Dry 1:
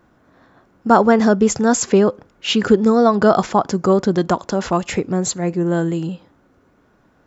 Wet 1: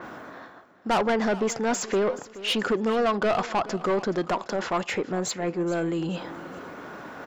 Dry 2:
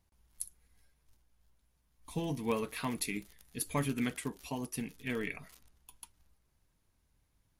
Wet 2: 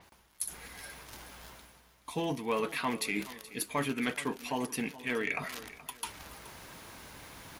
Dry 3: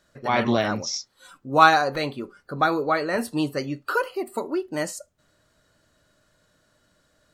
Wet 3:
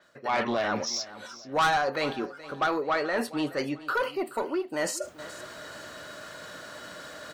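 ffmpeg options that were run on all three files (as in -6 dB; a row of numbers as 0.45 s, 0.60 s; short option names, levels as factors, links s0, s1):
-filter_complex "[0:a]highpass=f=600:p=1,equalizer=f=11000:w=0.33:g=-8.5,areverse,acompressor=mode=upward:threshold=0.0891:ratio=2.5,areverse,asoftclip=type=tanh:threshold=0.112,asplit=2[s0][s1];[s1]aecho=0:1:425|850|1275:0.141|0.048|0.0163[s2];[s0][s2]amix=inputs=2:normalize=0,adynamicequalizer=threshold=0.00501:dfrequency=5800:dqfactor=0.7:tfrequency=5800:tqfactor=0.7:attack=5:release=100:ratio=0.375:range=2.5:mode=cutabove:tftype=highshelf"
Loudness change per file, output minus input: -9.5 LU, +2.0 LU, -5.5 LU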